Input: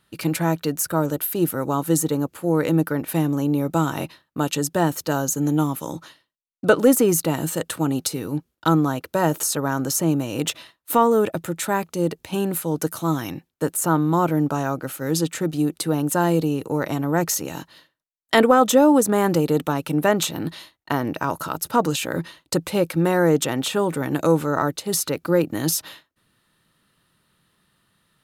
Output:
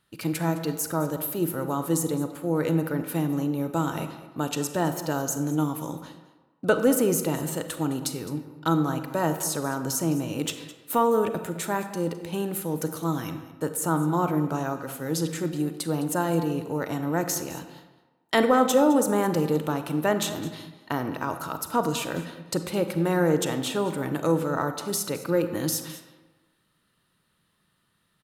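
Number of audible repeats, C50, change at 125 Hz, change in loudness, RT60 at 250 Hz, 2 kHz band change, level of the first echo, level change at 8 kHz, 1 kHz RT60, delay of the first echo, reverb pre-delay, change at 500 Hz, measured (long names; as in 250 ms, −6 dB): 1, 9.0 dB, −4.5 dB, −5.0 dB, 1.2 s, −5.0 dB, −17.0 dB, −5.0 dB, 1.3 s, 211 ms, 33 ms, −4.5 dB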